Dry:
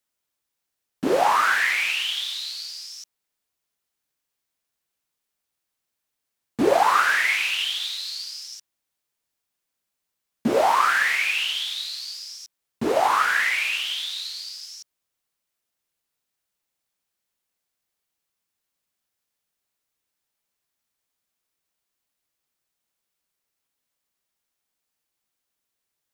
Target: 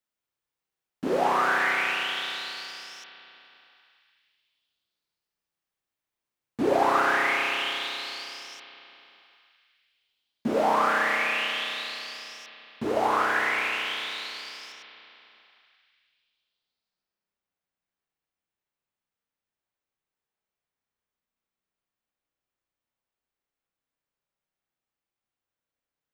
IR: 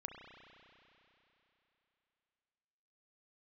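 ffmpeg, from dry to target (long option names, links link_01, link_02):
-filter_complex "[0:a]asetnsamples=nb_out_samples=441:pad=0,asendcmd='14.72 equalizer g -13.5',equalizer=frequency=13000:width_type=o:width=2.2:gain=-5.5[link_01];[1:a]atrim=start_sample=2205[link_02];[link_01][link_02]afir=irnorm=-1:irlink=0"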